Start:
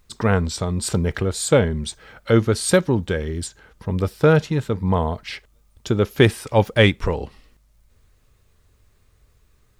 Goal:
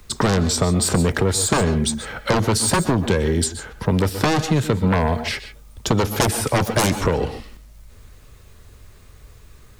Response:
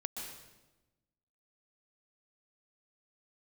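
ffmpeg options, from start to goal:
-filter_complex "[0:a]aeval=exprs='0.841*sin(PI/2*5.01*val(0)/0.841)':c=same,asplit=2[a][b];[1:a]atrim=start_sample=2205,atrim=end_sample=6615[c];[b][c]afir=irnorm=-1:irlink=0,volume=-4dB[d];[a][d]amix=inputs=2:normalize=0,acrossover=split=84|170|1600|5400[e][f][g][h][i];[e]acompressor=threshold=-24dB:ratio=4[j];[f]acompressor=threshold=-16dB:ratio=4[k];[g]acompressor=threshold=-10dB:ratio=4[l];[h]acompressor=threshold=-23dB:ratio=4[m];[i]acompressor=threshold=-13dB:ratio=4[n];[j][k][l][m][n]amix=inputs=5:normalize=0,volume=-8.5dB"

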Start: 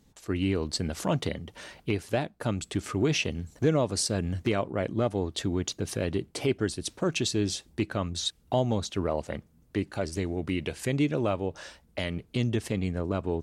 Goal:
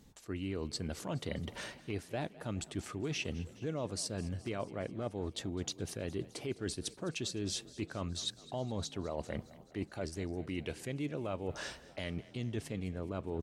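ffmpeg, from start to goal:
-filter_complex "[0:a]areverse,acompressor=threshold=-38dB:ratio=5,areverse,asplit=7[a][b][c][d][e][f][g];[b]adelay=209,afreqshift=31,volume=-19dB[h];[c]adelay=418,afreqshift=62,volume=-22.7dB[i];[d]adelay=627,afreqshift=93,volume=-26.5dB[j];[e]adelay=836,afreqshift=124,volume=-30.2dB[k];[f]adelay=1045,afreqshift=155,volume=-34dB[l];[g]adelay=1254,afreqshift=186,volume=-37.7dB[m];[a][h][i][j][k][l][m]amix=inputs=7:normalize=0,volume=2dB"

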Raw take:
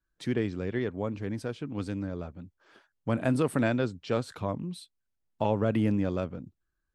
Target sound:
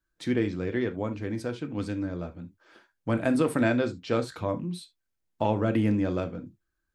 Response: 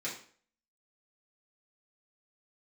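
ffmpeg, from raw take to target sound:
-filter_complex "[0:a]asplit=2[a][b];[1:a]atrim=start_sample=2205,atrim=end_sample=3528[c];[b][c]afir=irnorm=-1:irlink=0,volume=-7dB[d];[a][d]amix=inputs=2:normalize=0"

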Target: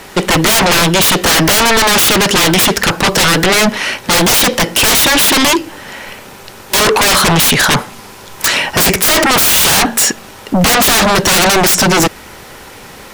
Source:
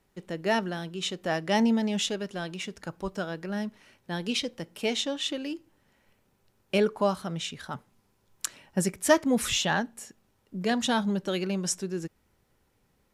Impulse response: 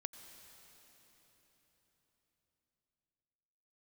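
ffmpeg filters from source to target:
-filter_complex "[0:a]lowshelf=f=81:g=9,asplit=2[a][b];[b]highpass=f=720:p=1,volume=23dB,asoftclip=type=tanh:threshold=-7.5dB[c];[a][c]amix=inputs=2:normalize=0,lowpass=f=7.7k:p=1,volume=-6dB,aeval=exprs='0.355*sin(PI/2*7.94*val(0)/0.355)':c=same,volume=2.5dB"

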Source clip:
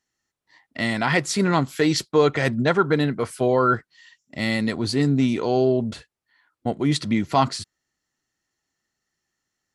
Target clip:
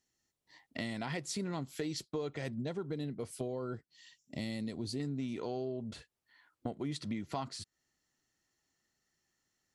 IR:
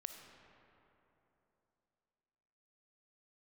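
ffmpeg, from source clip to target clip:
-af "asetnsamples=n=441:p=0,asendcmd='2.58 equalizer g -14.5;5 equalizer g -2.5',equalizer=f=1.4k:t=o:w=1.5:g=-7.5,acompressor=threshold=-36dB:ratio=5,volume=-1dB"

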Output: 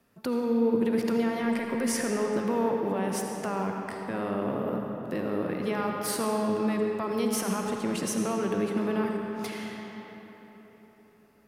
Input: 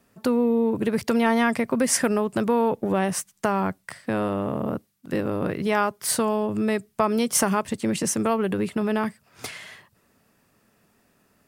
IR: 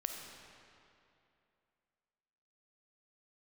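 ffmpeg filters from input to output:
-filter_complex "[0:a]equalizer=f=7.9k:t=o:w=0.69:g=-5.5,acrossover=split=130[a][b];[a]acompressor=threshold=-50dB:ratio=6[c];[b]alimiter=limit=-17dB:level=0:latency=1:release=49[d];[c][d]amix=inputs=2:normalize=0[e];[1:a]atrim=start_sample=2205,asetrate=28665,aresample=44100[f];[e][f]afir=irnorm=-1:irlink=0,volume=-5dB"

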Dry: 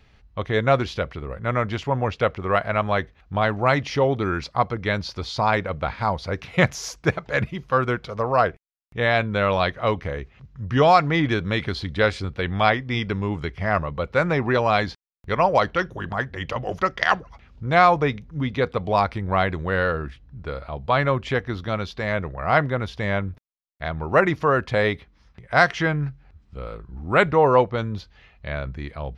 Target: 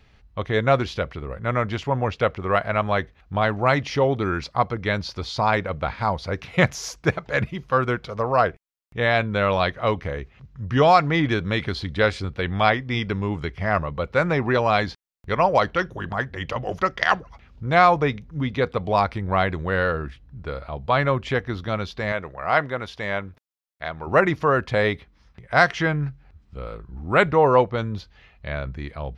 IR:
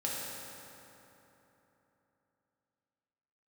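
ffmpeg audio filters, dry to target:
-filter_complex "[0:a]asettb=1/sr,asplit=3[a][b][c];[a]atrim=end=22.124[d];[b]atrim=start=22.12:end=24.07,asetpts=PTS-STARTPTS,afade=t=in:d=0.004:c=qsin,afade=t=out:st=1.946:d=0.004:c=qsin,lowshelf=f=250:g=-11.5[e];[c]atrim=start=24.066[f];[d][e]acrossfade=d=0.004:c1=hsin:c2=qsin[g];[g][f]acrossfade=d=0.004:c1=qsin:c2=hsin"

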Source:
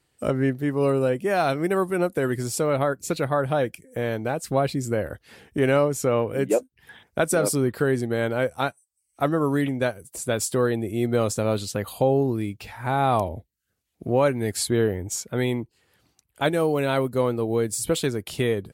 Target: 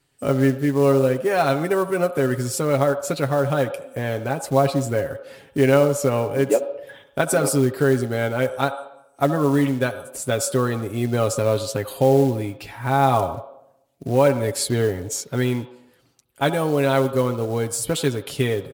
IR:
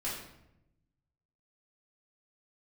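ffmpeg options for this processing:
-filter_complex "[0:a]aecho=1:1:7.3:0.55,acrusher=bits=6:mode=log:mix=0:aa=0.000001,asplit=2[a][b];[b]highpass=470,equalizer=f=530:t=q:w=4:g=9,equalizer=f=880:t=q:w=4:g=5,equalizer=f=1.3k:t=q:w=4:g=5,equalizer=f=2k:t=q:w=4:g=-9,equalizer=f=3.6k:t=q:w=4:g=6,lowpass=f=3.7k:w=0.5412,lowpass=f=3.7k:w=1.3066[c];[1:a]atrim=start_sample=2205,adelay=67[d];[c][d]afir=irnorm=-1:irlink=0,volume=-17dB[e];[a][e]amix=inputs=2:normalize=0,volume=1dB"

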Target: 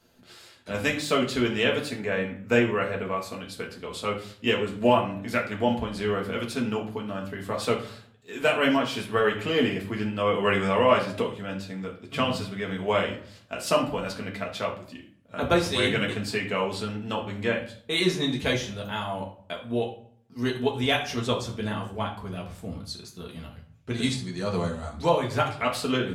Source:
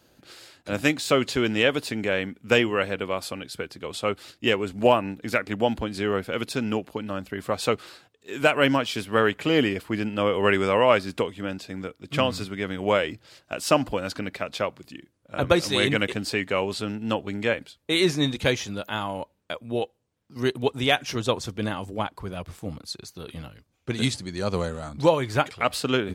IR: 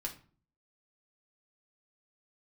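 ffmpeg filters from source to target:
-filter_complex "[0:a]asettb=1/sr,asplit=3[a][b][c];[a]atrim=end=1.894[d];[b]atrim=start=1.89:end=3.4,asetpts=PTS-STARTPTS,afade=t=in:d=0.004:c=qsin,afade=t=out:st=1.506:d=0.004:c=qsin,equalizer=f=3.15k:t=o:w=0.33:g=-10,equalizer=f=5k:t=o:w=0.33:g=-5,equalizer=f=10k:t=o:w=0.33:g=-9[e];[c]atrim=start=3.396[f];[d][e]acrossfade=d=0.004:c1=hsin:c2=qsin[g];[g][f]acrossfade=d=0.004:c1=qsin:c2=hsin[h];[1:a]atrim=start_sample=2205,asetrate=30870,aresample=44100[i];[h][i]afir=irnorm=-1:irlink=0,volume=-4dB"

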